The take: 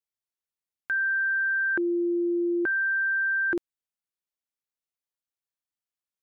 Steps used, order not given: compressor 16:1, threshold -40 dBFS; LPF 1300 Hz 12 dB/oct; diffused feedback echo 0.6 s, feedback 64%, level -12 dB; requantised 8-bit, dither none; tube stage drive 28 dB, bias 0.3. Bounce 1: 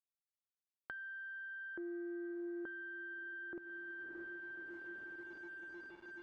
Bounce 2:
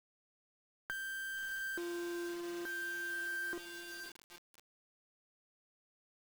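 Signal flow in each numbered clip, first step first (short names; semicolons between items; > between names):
diffused feedback echo > requantised > compressor > LPF > tube stage; LPF > tube stage > compressor > diffused feedback echo > requantised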